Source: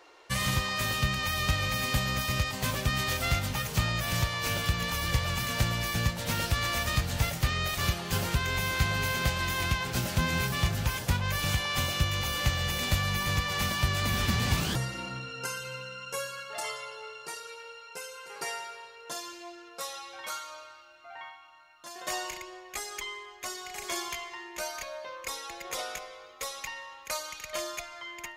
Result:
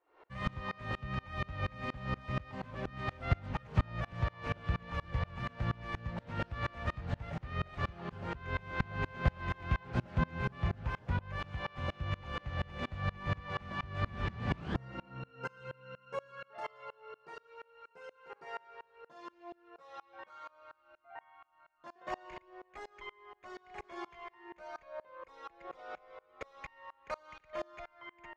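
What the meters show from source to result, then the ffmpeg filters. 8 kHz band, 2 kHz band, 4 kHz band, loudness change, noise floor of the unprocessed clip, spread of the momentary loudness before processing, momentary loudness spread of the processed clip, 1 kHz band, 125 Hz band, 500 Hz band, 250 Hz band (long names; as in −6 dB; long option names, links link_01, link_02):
below −30 dB, −11.0 dB, −19.5 dB, −9.0 dB, −51 dBFS, 13 LU, 17 LU, −7.0 dB, −7.0 dB, −6.0 dB, −6.0 dB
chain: -af "lowpass=1600,aeval=exprs='val(0)*pow(10,-28*if(lt(mod(-4.2*n/s,1),2*abs(-4.2)/1000),1-mod(-4.2*n/s,1)/(2*abs(-4.2)/1000),(mod(-4.2*n/s,1)-2*abs(-4.2)/1000)/(1-2*abs(-4.2)/1000))/20)':channel_layout=same,volume=2dB"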